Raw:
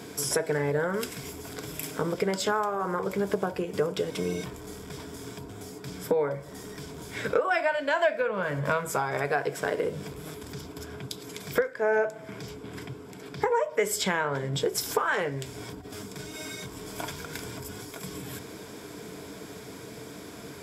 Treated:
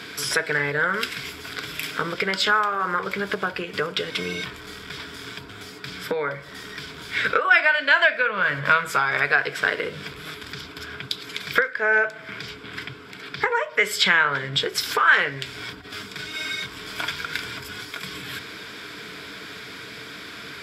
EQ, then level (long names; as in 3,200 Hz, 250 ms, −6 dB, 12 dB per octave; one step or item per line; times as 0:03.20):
flat-topped bell 2,400 Hz +14.5 dB 2.3 octaves
−1.5 dB